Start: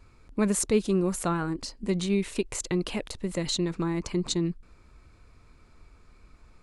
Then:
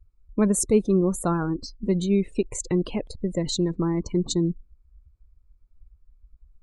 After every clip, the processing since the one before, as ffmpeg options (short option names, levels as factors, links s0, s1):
-af "afftdn=nr=30:nf=-37,equalizer=f=2400:t=o:w=1.8:g=-7,volume=1.68"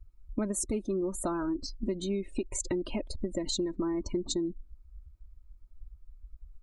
-af "aecho=1:1:3.2:0.75,acompressor=threshold=0.0355:ratio=6"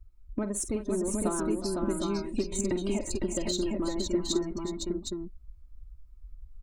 -filter_complex "[0:a]aeval=exprs='0.112*(cos(1*acos(clip(val(0)/0.112,-1,1)))-cos(1*PI/2))+0.00126*(cos(7*acos(clip(val(0)/0.112,-1,1)))-cos(7*PI/2))+0.00178*(cos(8*acos(clip(val(0)/0.112,-1,1)))-cos(8*PI/2))':c=same,asplit=2[s0][s1];[s1]aecho=0:1:49|364|377|508|759|764:0.251|0.188|0.178|0.596|0.376|0.501[s2];[s0][s2]amix=inputs=2:normalize=0"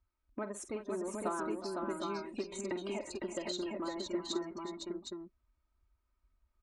-af "bandpass=f=1300:t=q:w=0.67:csg=0"